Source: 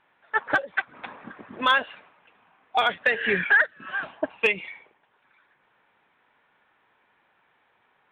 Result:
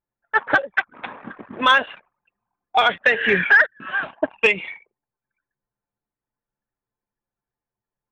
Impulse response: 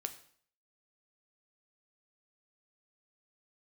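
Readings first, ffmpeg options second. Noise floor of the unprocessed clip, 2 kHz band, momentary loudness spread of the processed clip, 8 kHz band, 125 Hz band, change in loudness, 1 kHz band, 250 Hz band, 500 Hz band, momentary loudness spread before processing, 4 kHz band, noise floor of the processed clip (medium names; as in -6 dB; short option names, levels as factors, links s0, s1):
-67 dBFS, +5.5 dB, 21 LU, no reading, +5.5 dB, +5.5 dB, +5.5 dB, +5.5 dB, +5.5 dB, 21 LU, +5.5 dB, under -85 dBFS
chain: -af "acontrast=47,bandreject=f=4700:w=8.7,anlmdn=0.398"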